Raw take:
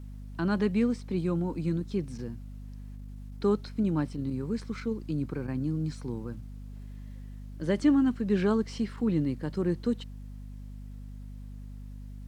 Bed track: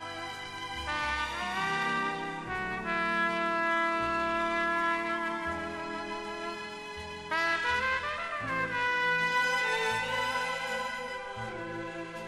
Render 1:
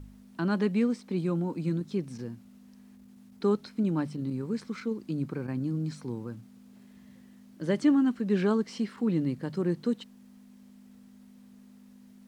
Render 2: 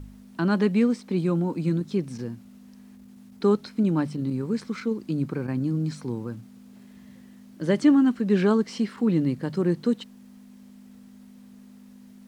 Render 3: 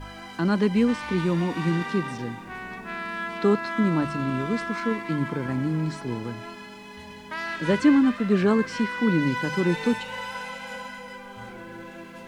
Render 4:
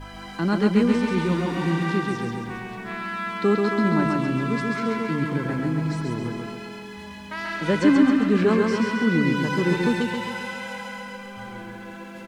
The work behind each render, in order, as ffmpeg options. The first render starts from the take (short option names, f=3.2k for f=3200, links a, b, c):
-af "bandreject=f=50:t=h:w=4,bandreject=f=100:t=h:w=4,bandreject=f=150:t=h:w=4"
-af "volume=5dB"
-filter_complex "[1:a]volume=-3dB[a];[0:a][a]amix=inputs=2:normalize=0"
-af "aecho=1:1:135|270|405|540|675|810|945|1080:0.668|0.368|0.202|0.111|0.0612|0.0336|0.0185|0.0102"